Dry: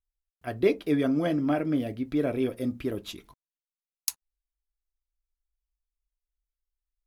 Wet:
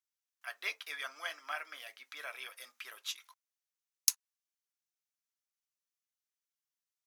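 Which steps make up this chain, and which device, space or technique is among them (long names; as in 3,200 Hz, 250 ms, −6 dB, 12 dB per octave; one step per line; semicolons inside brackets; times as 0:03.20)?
headphones lying on a table (high-pass filter 1,100 Hz 24 dB per octave; parametric band 6,000 Hz +6 dB 0.42 octaves)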